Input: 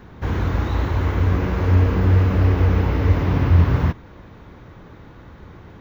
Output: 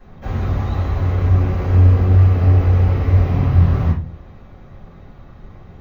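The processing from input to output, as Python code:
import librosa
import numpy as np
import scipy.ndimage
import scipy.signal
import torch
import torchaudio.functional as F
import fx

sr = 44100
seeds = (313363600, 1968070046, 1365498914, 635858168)

y = fx.room_shoebox(x, sr, seeds[0], volume_m3=140.0, walls='furnished', distance_m=5.4)
y = F.gain(torch.from_numpy(y), -13.5).numpy()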